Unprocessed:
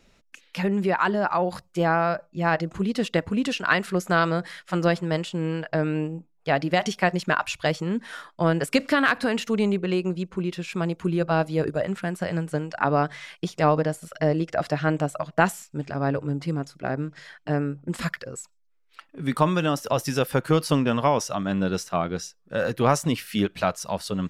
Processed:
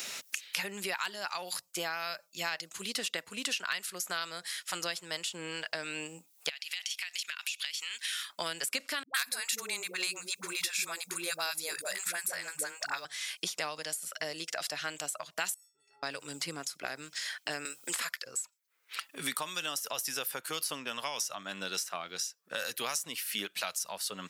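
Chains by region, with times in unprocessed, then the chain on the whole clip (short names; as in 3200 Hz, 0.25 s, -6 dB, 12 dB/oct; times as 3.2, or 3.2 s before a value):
6.49–8.3 resonant high-pass 2700 Hz, resonance Q 1.6 + compressor, threshold -40 dBFS
9.03–13.05 tilt +4.5 dB/oct + notch 3000 Hz, Q 5.3 + dispersion highs, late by 0.113 s, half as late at 350 Hz
15.54–16.03 metallic resonator 400 Hz, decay 0.71 s, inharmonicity 0.03 + compressor 4:1, threshold -58 dBFS
17.65–18.25 HPF 350 Hz + hard clip -16.5 dBFS + three-band squash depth 70%
whole clip: differentiator; three-band squash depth 100%; gain +3.5 dB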